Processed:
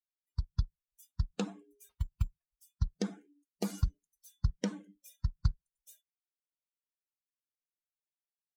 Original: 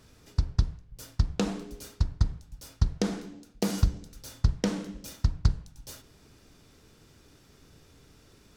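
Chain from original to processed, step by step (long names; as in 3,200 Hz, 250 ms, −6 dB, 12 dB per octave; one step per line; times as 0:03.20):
spectral dynamics exaggerated over time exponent 2
noise reduction from a noise print of the clip's start 22 dB
0:01.89–0:02.51: bad sample-rate conversion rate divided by 6×, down none, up hold
level −4.5 dB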